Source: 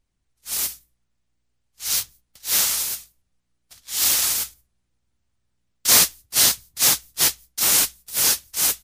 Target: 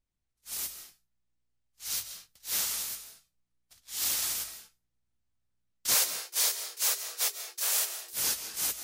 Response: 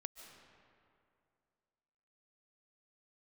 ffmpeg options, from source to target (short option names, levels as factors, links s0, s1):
-filter_complex "[0:a]asettb=1/sr,asplit=3[s0][s1][s2];[s0]atrim=end=5.944[s3];[s1]atrim=start=5.94:end=8.13,asetpts=PTS-STARTPTS,afade=t=in:d=0.004:c=qsin,afade=t=out:st=2.186:d=0.004:c=qsin,afreqshift=350[s4];[s2]atrim=start=8.126[s5];[s3][s4]acrossfade=d=0.004:c1=hsin:c2=qsin[s6];[s6][s5]acrossfade=d=0.004:c1=qsin:c2=hsin[s7];[1:a]atrim=start_sample=2205,afade=t=out:st=0.3:d=0.01,atrim=end_sample=13671[s8];[s7][s8]afir=irnorm=-1:irlink=0,volume=0.501"